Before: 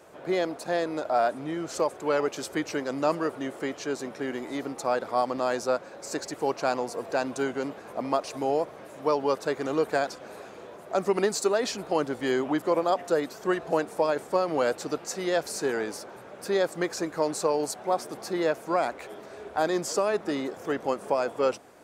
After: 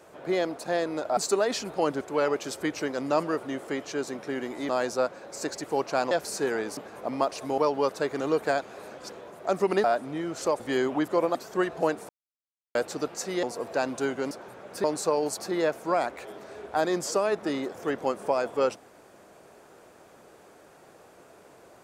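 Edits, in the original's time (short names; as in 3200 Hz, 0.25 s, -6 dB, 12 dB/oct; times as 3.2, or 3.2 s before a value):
1.17–1.93 swap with 11.3–12.14
4.61–5.39 cut
6.81–7.69 swap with 15.33–15.99
8.5–9.04 cut
10.07–10.58 reverse
12.89–13.25 cut
13.99–14.65 mute
16.52–17.21 cut
17.75–18.2 cut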